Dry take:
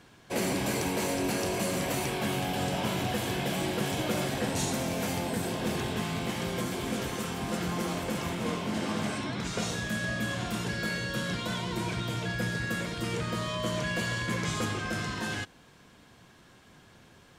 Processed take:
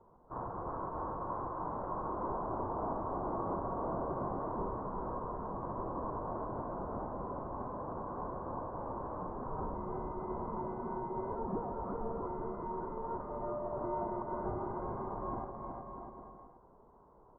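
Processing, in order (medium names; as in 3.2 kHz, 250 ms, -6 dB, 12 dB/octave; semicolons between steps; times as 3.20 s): rippled Chebyshev high-pass 2.6 kHz, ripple 3 dB; bouncing-ball echo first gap 370 ms, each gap 0.75×, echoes 5; frequency inversion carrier 3.7 kHz; trim +6 dB; Vorbis 48 kbps 32 kHz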